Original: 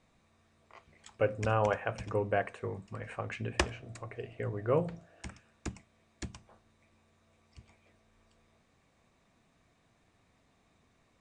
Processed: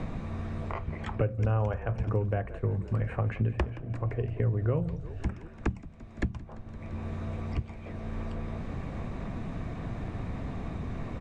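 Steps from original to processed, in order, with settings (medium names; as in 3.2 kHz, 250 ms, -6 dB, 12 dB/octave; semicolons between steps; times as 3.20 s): RIAA curve playback; frequency-shifting echo 171 ms, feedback 51%, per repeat -36 Hz, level -18 dB; three bands compressed up and down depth 100%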